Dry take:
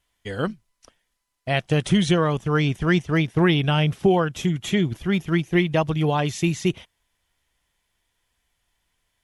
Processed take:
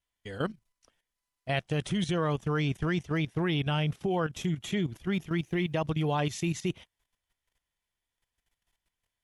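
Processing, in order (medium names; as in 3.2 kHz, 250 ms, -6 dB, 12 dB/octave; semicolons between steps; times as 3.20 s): 5.30–5.72 s: word length cut 12-bit, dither triangular; level held to a coarse grid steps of 12 dB; trim -3.5 dB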